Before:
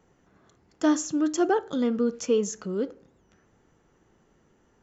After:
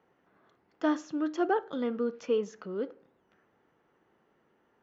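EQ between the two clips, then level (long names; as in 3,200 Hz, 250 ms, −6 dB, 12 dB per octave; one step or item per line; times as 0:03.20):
high-pass filter 520 Hz 6 dB per octave
high-frequency loss of the air 280 metres
0.0 dB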